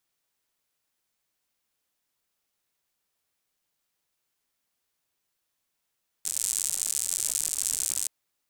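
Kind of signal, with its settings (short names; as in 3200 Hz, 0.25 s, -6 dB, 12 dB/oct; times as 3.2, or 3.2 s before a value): rain from filtered ticks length 1.82 s, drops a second 120, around 8000 Hz, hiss -27.5 dB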